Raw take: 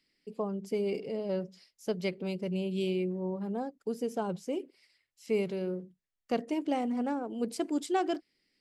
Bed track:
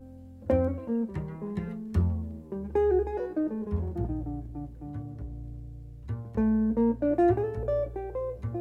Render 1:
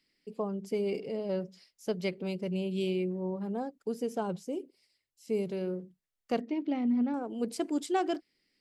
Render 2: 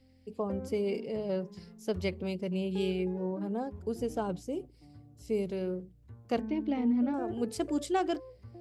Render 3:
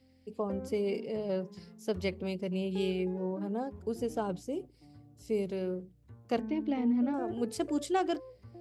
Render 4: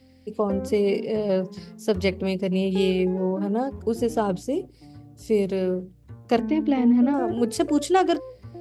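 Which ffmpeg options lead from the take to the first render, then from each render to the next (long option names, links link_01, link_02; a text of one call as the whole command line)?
ffmpeg -i in.wav -filter_complex "[0:a]asettb=1/sr,asplit=3[link_01][link_02][link_03];[link_01]atrim=end=4.434[link_04];[link_02]atrim=start=4.43:end=5.52,asetpts=PTS-STARTPTS,afade=type=in:duration=0.004:curve=qsin,afade=type=out:start_time=1.086:duration=0.004:curve=qsin,equalizer=frequency=1700:width_type=o:width=2.2:gain=-10.5[link_05];[link_03]atrim=start=5.516[link_06];[link_04][link_05]acrossfade=duration=0.004:curve1=hsin:curve2=qsin[link_07];[link_07][link_06]acrossfade=duration=0.004:curve1=qsin:curve2=hsin,asettb=1/sr,asplit=3[link_08][link_09][link_10];[link_08]atrim=end=6.404[link_11];[link_09]atrim=start=6.4:end=7.14,asetpts=PTS-STARTPTS,afade=type=in:duration=0.004:curve=qsin,afade=type=out:start_time=0.736:duration=0.004:curve=qsin,highpass=220,equalizer=frequency=230:width_type=q:width=4:gain=9,equalizer=frequency=500:width_type=q:width=4:gain=-8,equalizer=frequency=740:width_type=q:width=4:gain=-8,equalizer=frequency=1100:width_type=q:width=4:gain=-7,equalizer=frequency=1600:width_type=q:width=4:gain=-7,equalizer=frequency=2900:width_type=q:width=4:gain=-6,lowpass=frequency=4000:width=0.5412,lowpass=frequency=4000:width=1.3066[link_12];[link_10]atrim=start=7.136[link_13];[link_11][link_12]acrossfade=duration=0.004:curve1=hsin:curve2=qsin[link_14];[link_14][link_13]acrossfade=duration=0.004:curve1=qsin:curve2=hsin" out.wav
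ffmpeg -i in.wav -i bed.wav -filter_complex "[1:a]volume=-16dB[link_01];[0:a][link_01]amix=inputs=2:normalize=0" out.wav
ffmpeg -i in.wav -af "highpass=frequency=97:poles=1" out.wav
ffmpeg -i in.wav -af "volume=10dB" out.wav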